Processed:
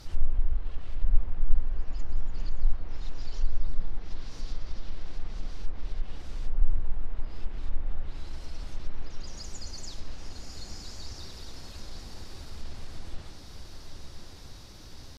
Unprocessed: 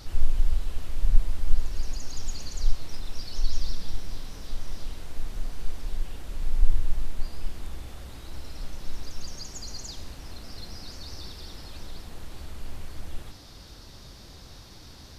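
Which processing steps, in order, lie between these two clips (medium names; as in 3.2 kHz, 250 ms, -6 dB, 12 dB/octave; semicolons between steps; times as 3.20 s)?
pitch shift +0.5 st; echo that smears into a reverb 1118 ms, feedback 42%, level -6 dB; low-pass that closes with the level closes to 1.8 kHz, closed at -15.5 dBFS; trim -3 dB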